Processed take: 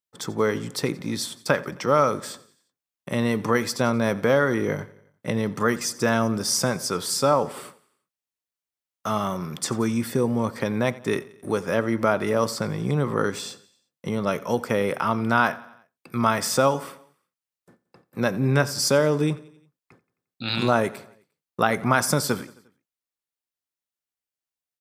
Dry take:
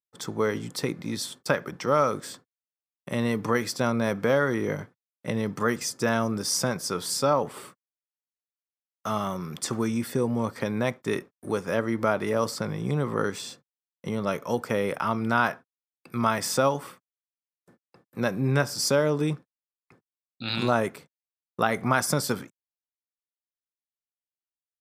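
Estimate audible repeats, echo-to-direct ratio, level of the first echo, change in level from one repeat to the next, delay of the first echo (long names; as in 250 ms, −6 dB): 3, −19.0 dB, −20.5 dB, −5.0 dB, 88 ms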